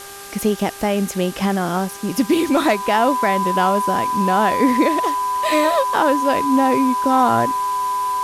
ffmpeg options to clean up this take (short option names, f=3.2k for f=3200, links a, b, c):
-af "bandreject=f=398.4:t=h:w=4,bandreject=f=796.8:t=h:w=4,bandreject=f=1.1952k:t=h:w=4,bandreject=f=1.5936k:t=h:w=4,bandreject=f=1k:w=30,afwtdn=0.016"